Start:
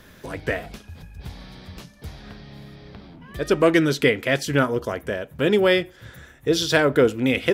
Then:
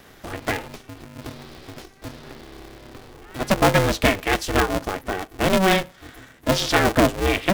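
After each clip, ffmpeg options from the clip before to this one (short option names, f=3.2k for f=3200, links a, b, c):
-af "aeval=exprs='val(0)*sgn(sin(2*PI*190*n/s))':c=same"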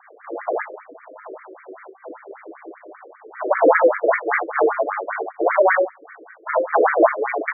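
-af "aemphasis=mode=reproduction:type=75fm,aecho=1:1:40|58|79:0.668|0.562|0.501,afftfilt=real='re*between(b*sr/1024,420*pow(1700/420,0.5+0.5*sin(2*PI*5.1*pts/sr))/1.41,420*pow(1700/420,0.5+0.5*sin(2*PI*5.1*pts/sr))*1.41)':imag='im*between(b*sr/1024,420*pow(1700/420,0.5+0.5*sin(2*PI*5.1*pts/sr))/1.41,420*pow(1700/420,0.5+0.5*sin(2*PI*5.1*pts/sr))*1.41)':win_size=1024:overlap=0.75,volume=5.5dB"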